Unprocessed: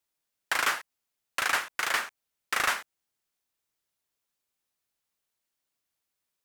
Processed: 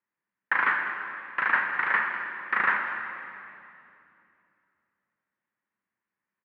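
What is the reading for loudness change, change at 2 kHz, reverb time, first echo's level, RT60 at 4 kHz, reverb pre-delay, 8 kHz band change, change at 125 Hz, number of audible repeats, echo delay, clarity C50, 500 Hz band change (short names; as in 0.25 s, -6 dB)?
+2.5 dB, +5.5 dB, 2.7 s, -12.5 dB, 2.4 s, 17 ms, under -35 dB, n/a, 1, 0.199 s, 4.0 dB, -1.5 dB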